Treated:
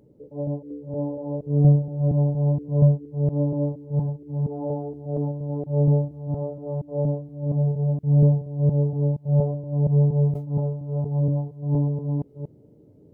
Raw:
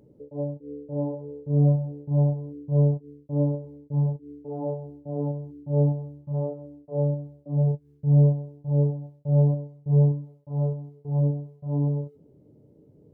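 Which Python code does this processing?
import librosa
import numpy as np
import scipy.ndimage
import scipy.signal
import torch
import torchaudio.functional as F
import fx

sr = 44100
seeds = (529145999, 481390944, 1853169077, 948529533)

y = fx.reverse_delay(x, sr, ms=235, wet_db=-1.0)
y = fx.sustainer(y, sr, db_per_s=82.0, at=(10.17, 11.27))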